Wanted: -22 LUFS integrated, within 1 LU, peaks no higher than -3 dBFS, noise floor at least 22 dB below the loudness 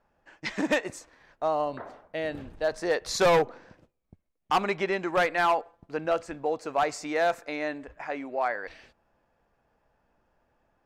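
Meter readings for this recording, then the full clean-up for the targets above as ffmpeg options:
loudness -28.5 LUFS; peak -16.5 dBFS; loudness target -22.0 LUFS
-> -af "volume=6.5dB"

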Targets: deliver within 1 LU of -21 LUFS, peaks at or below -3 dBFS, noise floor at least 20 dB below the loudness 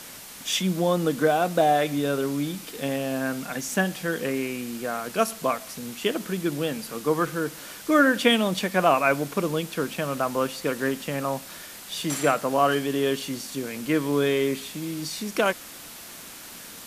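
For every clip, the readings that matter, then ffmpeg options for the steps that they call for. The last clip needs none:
noise floor -42 dBFS; noise floor target -46 dBFS; loudness -25.5 LUFS; peak -5.5 dBFS; loudness target -21.0 LUFS
-> -af "afftdn=nr=6:nf=-42"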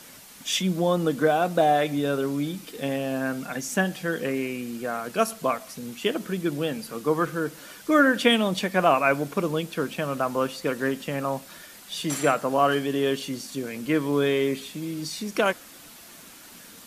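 noise floor -47 dBFS; loudness -25.5 LUFS; peak -5.5 dBFS; loudness target -21.0 LUFS
-> -af "volume=4.5dB,alimiter=limit=-3dB:level=0:latency=1"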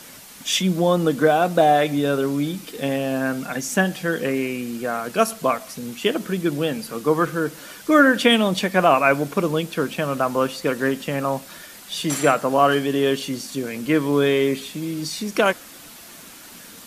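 loudness -21.0 LUFS; peak -3.0 dBFS; noise floor -43 dBFS

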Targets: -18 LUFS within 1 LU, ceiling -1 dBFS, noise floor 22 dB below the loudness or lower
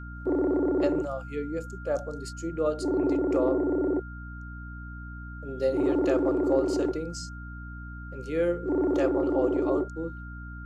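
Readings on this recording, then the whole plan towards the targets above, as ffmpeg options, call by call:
hum 60 Hz; harmonics up to 300 Hz; hum level -37 dBFS; steady tone 1400 Hz; tone level -44 dBFS; loudness -27.5 LUFS; peak -12.5 dBFS; loudness target -18.0 LUFS
-> -af "bandreject=f=60:t=h:w=6,bandreject=f=120:t=h:w=6,bandreject=f=180:t=h:w=6,bandreject=f=240:t=h:w=6,bandreject=f=300:t=h:w=6"
-af "bandreject=f=1.4k:w=30"
-af "volume=9.5dB"

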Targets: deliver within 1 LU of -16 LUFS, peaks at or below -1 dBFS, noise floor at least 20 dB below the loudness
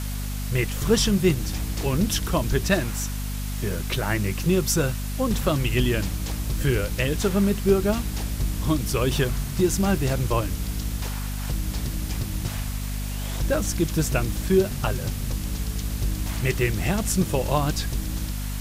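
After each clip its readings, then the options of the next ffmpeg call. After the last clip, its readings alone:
hum 50 Hz; harmonics up to 250 Hz; hum level -27 dBFS; noise floor -30 dBFS; noise floor target -45 dBFS; loudness -25.0 LUFS; peak -7.0 dBFS; loudness target -16.0 LUFS
-> -af "bandreject=f=50:t=h:w=6,bandreject=f=100:t=h:w=6,bandreject=f=150:t=h:w=6,bandreject=f=200:t=h:w=6,bandreject=f=250:t=h:w=6"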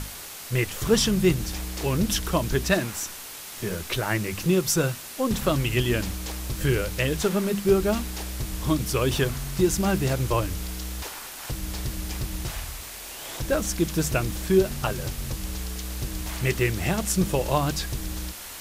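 hum none; noise floor -39 dBFS; noise floor target -46 dBFS
-> -af "afftdn=nr=7:nf=-39"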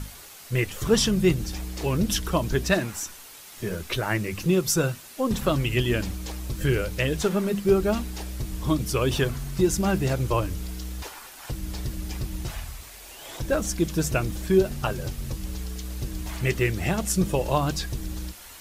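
noise floor -45 dBFS; noise floor target -47 dBFS
-> -af "afftdn=nr=6:nf=-45"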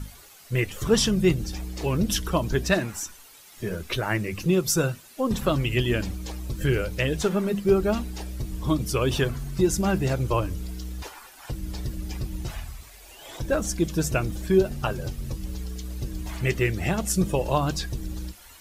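noise floor -49 dBFS; loudness -26.5 LUFS; peak -7.5 dBFS; loudness target -16.0 LUFS
-> -af "volume=10.5dB,alimiter=limit=-1dB:level=0:latency=1"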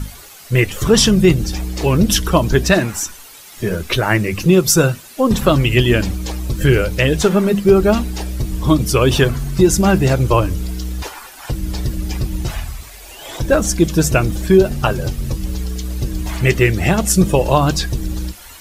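loudness -16.0 LUFS; peak -1.0 dBFS; noise floor -39 dBFS

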